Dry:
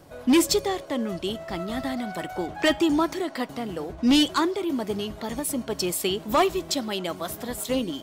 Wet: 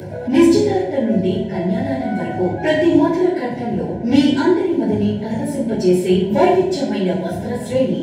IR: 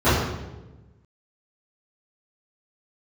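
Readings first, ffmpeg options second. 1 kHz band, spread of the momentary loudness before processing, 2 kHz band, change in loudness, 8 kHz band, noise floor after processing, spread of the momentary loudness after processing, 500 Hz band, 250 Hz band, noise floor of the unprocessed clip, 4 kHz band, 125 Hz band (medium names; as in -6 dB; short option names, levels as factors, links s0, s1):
+5.0 dB, 12 LU, +4.5 dB, +8.5 dB, no reading, -27 dBFS, 8 LU, +10.5 dB, +9.5 dB, -42 dBFS, -2.0 dB, +15.5 dB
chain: -filter_complex "[0:a]asuperstop=centerf=1200:order=20:qfactor=3.1[s0];[1:a]atrim=start_sample=2205,asetrate=66150,aresample=44100[s1];[s0][s1]afir=irnorm=-1:irlink=0,acompressor=mode=upward:threshold=0.562:ratio=2.5,volume=0.168"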